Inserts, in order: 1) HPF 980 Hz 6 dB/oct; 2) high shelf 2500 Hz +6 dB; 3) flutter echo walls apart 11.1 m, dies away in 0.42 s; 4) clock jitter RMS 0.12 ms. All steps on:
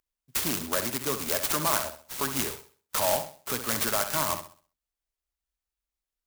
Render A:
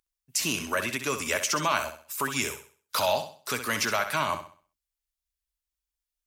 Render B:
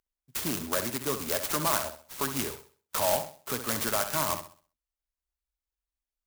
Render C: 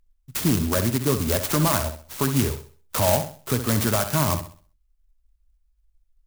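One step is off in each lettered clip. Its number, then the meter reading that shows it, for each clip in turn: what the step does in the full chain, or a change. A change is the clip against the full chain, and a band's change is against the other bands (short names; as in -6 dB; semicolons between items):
4, 2 kHz band +5.0 dB; 2, 4 kHz band -2.0 dB; 1, 125 Hz band +15.0 dB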